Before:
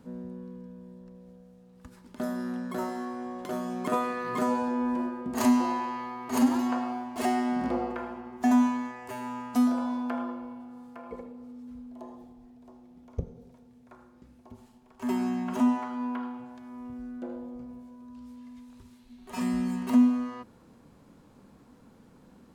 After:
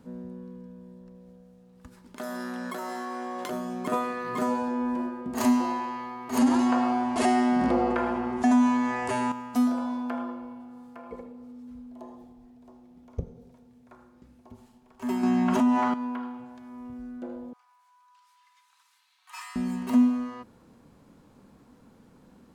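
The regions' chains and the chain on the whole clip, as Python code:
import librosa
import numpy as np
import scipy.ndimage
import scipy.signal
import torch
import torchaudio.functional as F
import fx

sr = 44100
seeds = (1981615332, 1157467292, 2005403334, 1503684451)

y = fx.chain(x, sr, fx.highpass(hz=750.0, slope=6),
    fx.env_flatten(amount_pct=100), at=(2.18, 3.5))
y = fx.chain(y, sr, fx.steep_lowpass(hz=11000.0, slope=96),
    fx.env_flatten(amount_pct=50), at=(6.38, 9.32))
y = fx.chain(y, sr, fx.high_shelf(hz=11000.0, db=-9.5),
    fx.notch(hz=460.0, q=8.2),
    fx.env_flatten(amount_pct=70), at=(15.23, 15.94))
y = fx.chain(y, sr, fx.steep_highpass(hz=920.0, slope=48),
    fx.high_shelf(hz=9000.0, db=-3.5),
    fx.comb(ms=3.9, depth=0.42), at=(17.53, 19.56))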